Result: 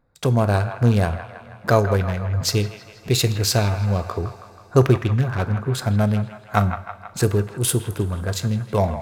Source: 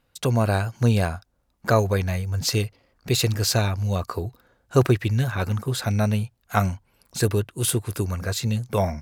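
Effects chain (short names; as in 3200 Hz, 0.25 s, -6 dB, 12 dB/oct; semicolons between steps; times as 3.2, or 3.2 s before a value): Wiener smoothing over 15 samples; band-limited delay 0.161 s, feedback 60%, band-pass 1400 Hz, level -8.5 dB; two-slope reverb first 0.48 s, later 3.8 s, from -18 dB, DRR 12 dB; gain +2.5 dB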